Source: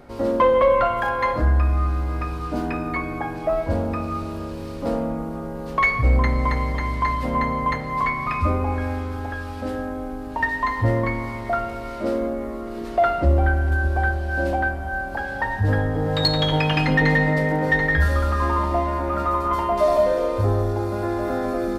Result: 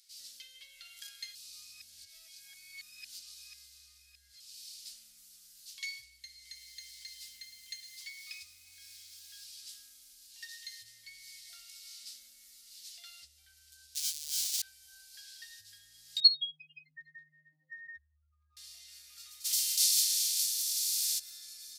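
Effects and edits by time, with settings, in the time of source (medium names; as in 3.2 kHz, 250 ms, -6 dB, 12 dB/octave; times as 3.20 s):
1.35–4.40 s: reverse
6.44–9.45 s: bit-crushed delay 108 ms, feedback 55%, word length 8-bit, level -14.5 dB
13.95–14.62 s: square wave that keeps the level
16.20–18.57 s: spectral contrast enhancement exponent 3.4
19.44–21.18 s: spectral contrast reduction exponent 0.53
whole clip: tilt EQ -2.5 dB/octave; compression 4:1, threshold -16 dBFS; inverse Chebyshev high-pass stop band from 1.1 kHz, stop band 70 dB; trim +13 dB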